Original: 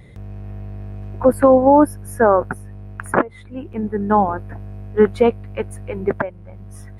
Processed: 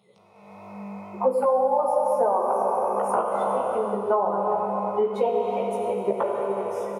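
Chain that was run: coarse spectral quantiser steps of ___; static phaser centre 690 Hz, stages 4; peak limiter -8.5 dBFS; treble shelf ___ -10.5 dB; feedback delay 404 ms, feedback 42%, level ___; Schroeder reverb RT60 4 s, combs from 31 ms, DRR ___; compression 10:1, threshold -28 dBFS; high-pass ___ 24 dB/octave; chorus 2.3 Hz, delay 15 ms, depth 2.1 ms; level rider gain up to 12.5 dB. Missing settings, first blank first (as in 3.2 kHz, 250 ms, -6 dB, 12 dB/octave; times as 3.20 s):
30 dB, 4.3 kHz, -21 dB, 1.5 dB, 240 Hz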